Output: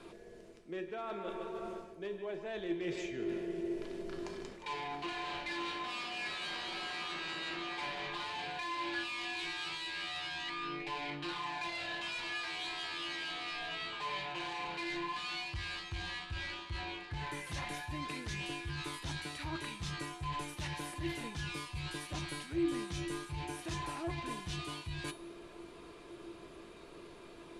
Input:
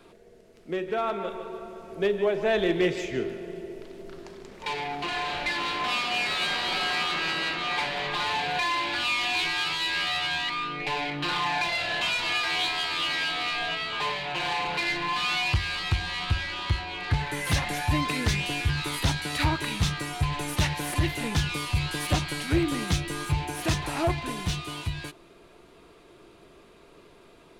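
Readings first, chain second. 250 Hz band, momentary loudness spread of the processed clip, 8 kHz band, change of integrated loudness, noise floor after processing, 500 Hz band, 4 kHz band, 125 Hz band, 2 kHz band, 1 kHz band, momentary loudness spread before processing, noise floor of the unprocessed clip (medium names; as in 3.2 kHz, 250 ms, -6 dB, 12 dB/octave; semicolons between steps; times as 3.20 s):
-9.0 dB, 7 LU, -12.5 dB, -12.5 dB, -53 dBFS, -11.5 dB, -12.5 dB, -15.0 dB, -12.0 dB, -11.0 dB, 9 LU, -54 dBFS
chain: low-pass 11 kHz 24 dB/octave; reverse; compression 10:1, threshold -38 dBFS, peak gain reduction 19 dB; reverse; feedback comb 340 Hz, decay 0.36 s, harmonics odd, mix 80%; trim +13 dB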